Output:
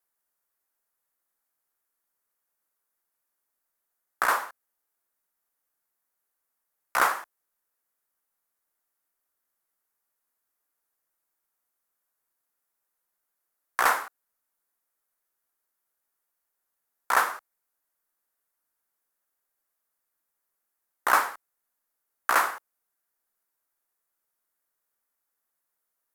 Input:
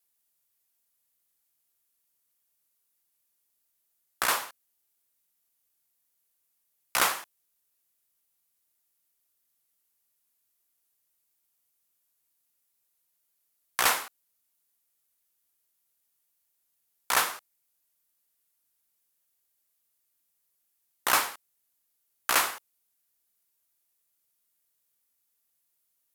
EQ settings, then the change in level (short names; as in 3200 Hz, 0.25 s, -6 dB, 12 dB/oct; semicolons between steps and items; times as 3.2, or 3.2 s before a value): bell 99 Hz -12 dB 2.3 oct; resonant high shelf 2100 Hz -9.5 dB, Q 1.5; +3.5 dB